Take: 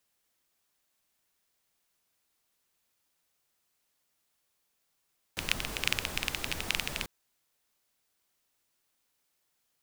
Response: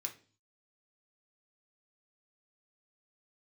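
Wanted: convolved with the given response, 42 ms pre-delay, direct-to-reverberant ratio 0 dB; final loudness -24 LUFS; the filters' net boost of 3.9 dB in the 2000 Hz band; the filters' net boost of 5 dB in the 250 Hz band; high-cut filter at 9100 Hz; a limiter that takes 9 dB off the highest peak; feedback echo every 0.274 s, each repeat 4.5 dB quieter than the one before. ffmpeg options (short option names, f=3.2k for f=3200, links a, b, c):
-filter_complex "[0:a]lowpass=9.1k,equalizer=f=250:t=o:g=6.5,equalizer=f=2k:t=o:g=5,alimiter=limit=-12.5dB:level=0:latency=1,aecho=1:1:274|548|822|1096|1370|1644|1918|2192|2466:0.596|0.357|0.214|0.129|0.0772|0.0463|0.0278|0.0167|0.01,asplit=2[a][b];[1:a]atrim=start_sample=2205,adelay=42[c];[b][c]afir=irnorm=-1:irlink=0,volume=1.5dB[d];[a][d]amix=inputs=2:normalize=0,volume=6dB"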